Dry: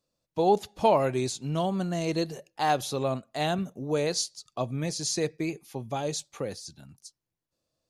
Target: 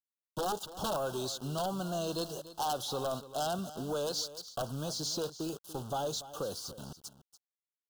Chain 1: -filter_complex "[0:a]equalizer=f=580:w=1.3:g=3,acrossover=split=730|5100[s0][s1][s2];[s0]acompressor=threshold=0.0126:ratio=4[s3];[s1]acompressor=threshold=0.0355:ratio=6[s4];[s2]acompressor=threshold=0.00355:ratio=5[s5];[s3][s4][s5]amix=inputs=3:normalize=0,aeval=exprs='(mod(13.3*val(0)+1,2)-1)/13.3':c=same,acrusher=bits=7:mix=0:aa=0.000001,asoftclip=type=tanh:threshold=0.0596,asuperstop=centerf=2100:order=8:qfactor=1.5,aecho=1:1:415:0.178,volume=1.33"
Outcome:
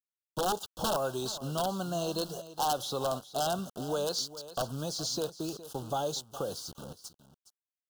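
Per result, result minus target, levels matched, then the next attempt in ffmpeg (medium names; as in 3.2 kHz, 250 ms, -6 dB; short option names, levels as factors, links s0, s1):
echo 127 ms late; saturation: distortion -9 dB
-filter_complex "[0:a]equalizer=f=580:w=1.3:g=3,acrossover=split=730|5100[s0][s1][s2];[s0]acompressor=threshold=0.0126:ratio=4[s3];[s1]acompressor=threshold=0.0355:ratio=6[s4];[s2]acompressor=threshold=0.00355:ratio=5[s5];[s3][s4][s5]amix=inputs=3:normalize=0,aeval=exprs='(mod(13.3*val(0)+1,2)-1)/13.3':c=same,acrusher=bits=7:mix=0:aa=0.000001,asoftclip=type=tanh:threshold=0.0596,asuperstop=centerf=2100:order=8:qfactor=1.5,aecho=1:1:288:0.178,volume=1.33"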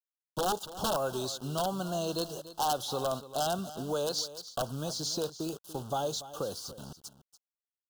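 saturation: distortion -9 dB
-filter_complex "[0:a]equalizer=f=580:w=1.3:g=3,acrossover=split=730|5100[s0][s1][s2];[s0]acompressor=threshold=0.0126:ratio=4[s3];[s1]acompressor=threshold=0.0355:ratio=6[s4];[s2]acompressor=threshold=0.00355:ratio=5[s5];[s3][s4][s5]amix=inputs=3:normalize=0,aeval=exprs='(mod(13.3*val(0)+1,2)-1)/13.3':c=same,acrusher=bits=7:mix=0:aa=0.000001,asoftclip=type=tanh:threshold=0.0266,asuperstop=centerf=2100:order=8:qfactor=1.5,aecho=1:1:288:0.178,volume=1.33"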